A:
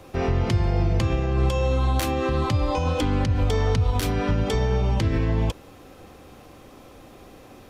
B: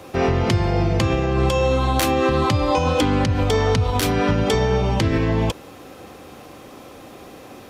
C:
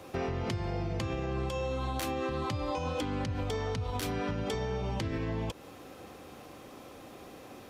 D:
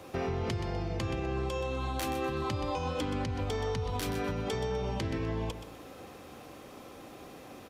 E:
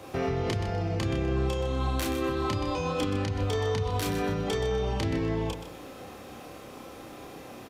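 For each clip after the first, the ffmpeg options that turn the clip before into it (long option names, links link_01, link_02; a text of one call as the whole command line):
ffmpeg -i in.wav -af "highpass=frequency=150:poles=1,volume=7dB" out.wav
ffmpeg -i in.wav -af "acompressor=threshold=-23dB:ratio=4,volume=-8dB" out.wav
ffmpeg -i in.wav -af "aecho=1:1:125|250|375|500:0.316|0.101|0.0324|0.0104" out.wav
ffmpeg -i in.wav -filter_complex "[0:a]asplit=2[link_01][link_02];[link_02]adelay=30,volume=-3dB[link_03];[link_01][link_03]amix=inputs=2:normalize=0,volume=2.5dB" out.wav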